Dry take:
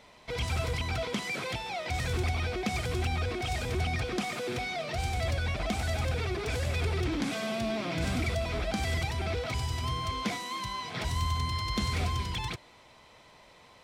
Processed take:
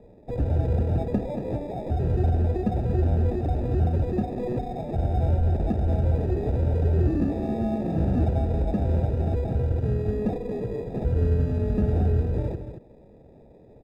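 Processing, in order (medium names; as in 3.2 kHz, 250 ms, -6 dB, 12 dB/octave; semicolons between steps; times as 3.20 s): sample-and-hold 30×; boxcar filter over 41 samples; on a send: delay 228 ms -9.5 dB; on the sum: trim +8.5 dB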